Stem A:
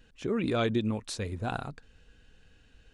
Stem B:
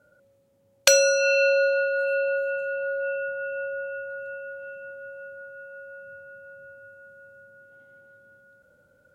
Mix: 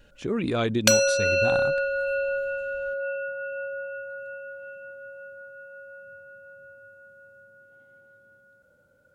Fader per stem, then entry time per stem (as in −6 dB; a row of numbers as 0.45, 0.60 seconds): +2.5, −2.0 decibels; 0.00, 0.00 seconds